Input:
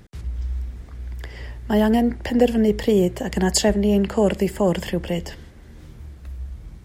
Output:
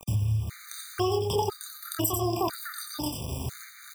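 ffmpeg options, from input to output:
-filter_complex "[0:a]asplit=2[a][b];[b]aecho=0:1:156:0.473[c];[a][c]amix=inputs=2:normalize=0,adynamicequalizer=threshold=0.0112:dfrequency=120:dqfactor=3.1:tfrequency=120:tqfactor=3.1:attack=5:release=100:ratio=0.375:range=2:mode=boostabove:tftype=bell,asplit=2[d][e];[e]aecho=0:1:47|69:0.562|0.15[f];[d][f]amix=inputs=2:normalize=0,asetrate=76440,aresample=44100,bass=f=250:g=7,treble=f=4k:g=13,acrusher=bits=5:mix=0:aa=0.000001,acompressor=threshold=-25dB:ratio=6,afftfilt=real='re*gt(sin(2*PI*1*pts/sr)*(1-2*mod(floor(b*sr/1024/1200),2)),0)':imag='im*gt(sin(2*PI*1*pts/sr)*(1-2*mod(floor(b*sr/1024/1200),2)),0)':win_size=1024:overlap=0.75,volume=1dB"

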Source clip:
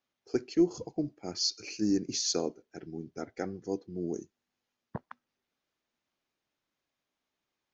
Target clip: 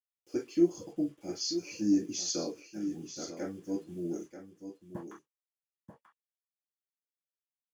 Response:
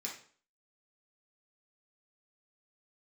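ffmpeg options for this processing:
-filter_complex "[0:a]acrusher=bits=9:mix=0:aa=0.000001,aecho=1:1:937:0.316[a];[1:a]atrim=start_sample=2205,atrim=end_sample=4410,asetrate=61740,aresample=44100[b];[a][b]afir=irnorm=-1:irlink=0"

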